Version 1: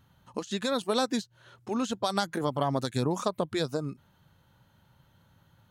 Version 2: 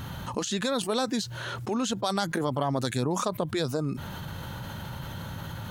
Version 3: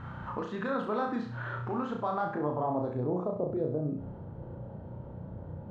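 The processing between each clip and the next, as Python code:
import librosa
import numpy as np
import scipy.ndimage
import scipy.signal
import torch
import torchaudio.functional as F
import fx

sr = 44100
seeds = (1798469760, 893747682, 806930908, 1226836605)

y1 = fx.env_flatten(x, sr, amount_pct=70)
y1 = y1 * 10.0 ** (-1.5 / 20.0)
y2 = fx.quant_dither(y1, sr, seeds[0], bits=8, dither='triangular')
y2 = fx.filter_sweep_lowpass(y2, sr, from_hz=1400.0, to_hz=520.0, start_s=1.78, end_s=3.35, q=1.8)
y2 = fx.room_flutter(y2, sr, wall_m=5.7, rt60_s=0.51)
y2 = y2 * 10.0 ** (-7.0 / 20.0)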